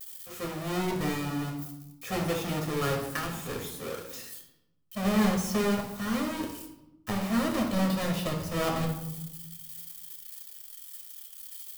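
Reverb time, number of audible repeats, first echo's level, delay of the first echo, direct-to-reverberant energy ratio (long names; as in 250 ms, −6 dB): 0.90 s, no echo audible, no echo audible, no echo audible, 0.0 dB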